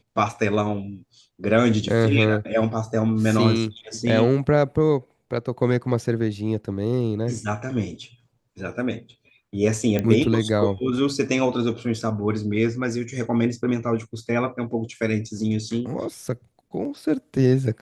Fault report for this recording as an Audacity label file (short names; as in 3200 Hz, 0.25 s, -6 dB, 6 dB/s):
9.990000	9.990000	pop -11 dBFS